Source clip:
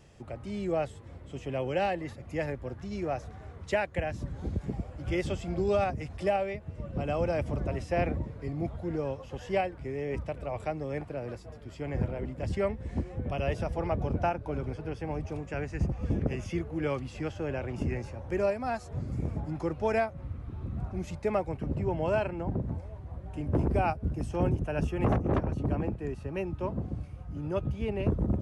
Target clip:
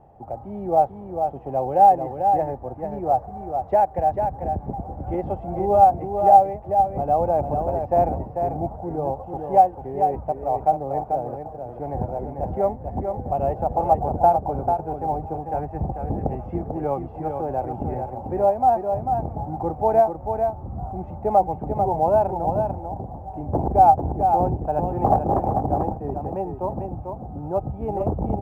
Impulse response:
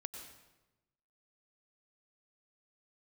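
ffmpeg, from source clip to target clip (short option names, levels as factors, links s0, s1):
-af "lowpass=f=790:t=q:w=9,aecho=1:1:443:0.501,volume=1.19" -ar 44100 -c:a adpcm_ima_wav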